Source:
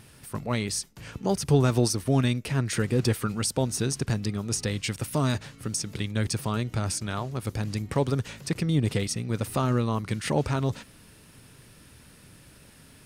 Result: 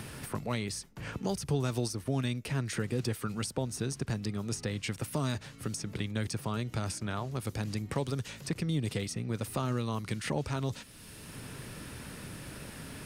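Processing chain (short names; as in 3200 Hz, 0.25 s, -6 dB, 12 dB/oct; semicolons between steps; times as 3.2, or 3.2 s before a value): three-band squash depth 70%; gain -7 dB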